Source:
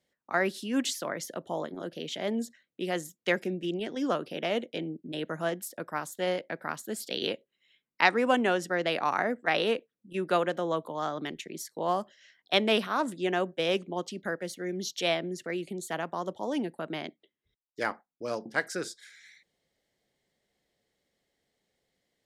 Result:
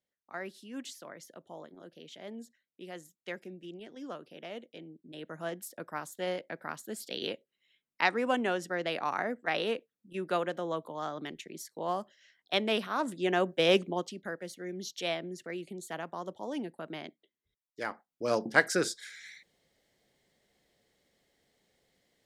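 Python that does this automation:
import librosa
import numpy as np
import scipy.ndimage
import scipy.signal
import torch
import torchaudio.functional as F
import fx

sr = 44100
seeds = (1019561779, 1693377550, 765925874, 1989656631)

y = fx.gain(x, sr, db=fx.line((4.92, -13.0), (5.64, -4.5), (12.82, -4.5), (13.8, 4.5), (14.2, -5.5), (17.87, -5.5), (18.37, 5.5)))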